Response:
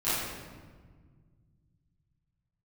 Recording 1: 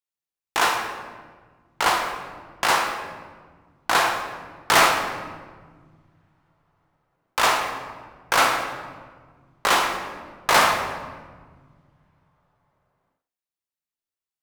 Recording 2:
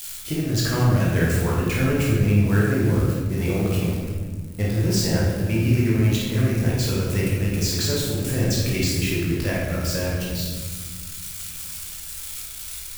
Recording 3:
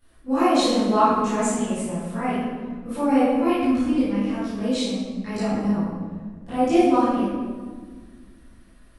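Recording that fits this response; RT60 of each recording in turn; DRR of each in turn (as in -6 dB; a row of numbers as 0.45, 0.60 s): 3; 1.6, 1.6, 1.6 s; 2.0, -5.5, -15.5 dB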